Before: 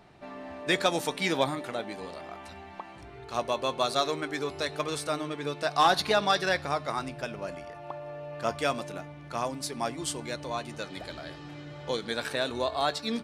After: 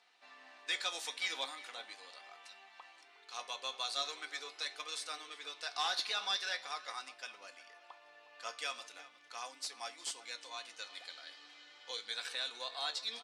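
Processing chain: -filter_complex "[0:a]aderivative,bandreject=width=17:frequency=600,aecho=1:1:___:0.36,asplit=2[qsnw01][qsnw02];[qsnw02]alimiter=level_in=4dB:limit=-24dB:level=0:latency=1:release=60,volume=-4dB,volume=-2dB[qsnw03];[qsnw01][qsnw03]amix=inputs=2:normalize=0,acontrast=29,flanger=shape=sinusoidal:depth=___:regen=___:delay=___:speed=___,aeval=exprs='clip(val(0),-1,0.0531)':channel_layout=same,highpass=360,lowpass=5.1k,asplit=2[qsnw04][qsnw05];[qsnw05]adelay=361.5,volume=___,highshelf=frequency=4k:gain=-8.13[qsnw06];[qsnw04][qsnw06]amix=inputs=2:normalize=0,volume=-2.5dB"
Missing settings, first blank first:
4, 5.4, 76, 9.9, 0.41, -16dB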